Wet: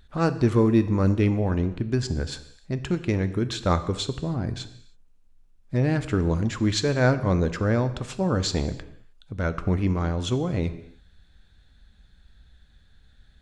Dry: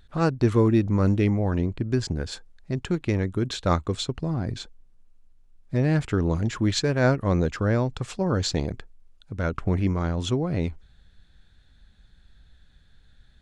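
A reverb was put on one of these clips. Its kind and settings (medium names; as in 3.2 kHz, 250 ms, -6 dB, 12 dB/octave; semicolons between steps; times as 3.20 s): gated-style reverb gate 340 ms falling, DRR 10.5 dB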